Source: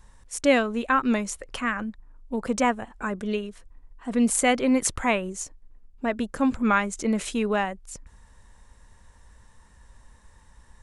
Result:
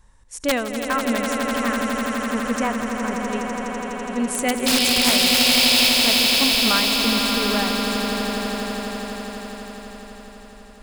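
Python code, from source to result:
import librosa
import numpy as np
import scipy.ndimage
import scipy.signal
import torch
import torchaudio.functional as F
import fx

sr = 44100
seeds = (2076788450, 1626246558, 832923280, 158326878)

y = fx.spec_paint(x, sr, seeds[0], shape='noise', start_s=4.66, length_s=1.23, low_hz=2200.0, high_hz=5400.0, level_db=-18.0)
y = (np.mod(10.0 ** (9.0 / 20.0) * y + 1.0, 2.0) - 1.0) / 10.0 ** (9.0 / 20.0)
y = fx.echo_swell(y, sr, ms=83, loudest=8, wet_db=-8.5)
y = F.gain(torch.from_numpy(y), -2.0).numpy()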